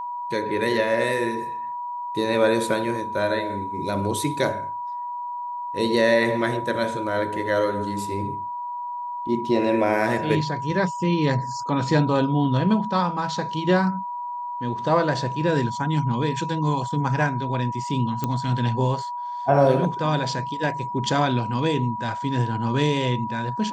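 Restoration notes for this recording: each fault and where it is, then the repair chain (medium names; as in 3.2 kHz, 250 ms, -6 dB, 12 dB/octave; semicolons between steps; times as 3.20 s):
whine 970 Hz -28 dBFS
18.24 s: pop -11 dBFS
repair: de-click; band-stop 970 Hz, Q 30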